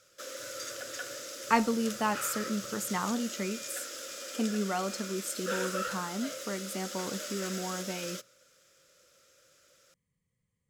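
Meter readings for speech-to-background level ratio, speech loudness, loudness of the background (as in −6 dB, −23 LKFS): 4.5 dB, −34.0 LKFS, −38.5 LKFS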